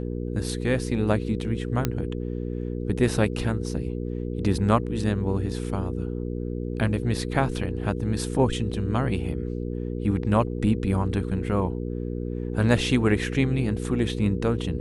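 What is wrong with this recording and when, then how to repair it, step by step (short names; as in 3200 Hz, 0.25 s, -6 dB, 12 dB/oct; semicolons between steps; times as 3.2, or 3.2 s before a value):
hum 60 Hz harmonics 8 -30 dBFS
1.85 pop -9 dBFS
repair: de-click; de-hum 60 Hz, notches 8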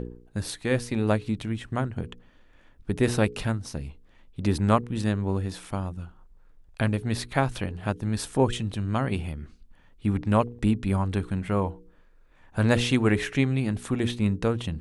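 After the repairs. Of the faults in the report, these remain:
none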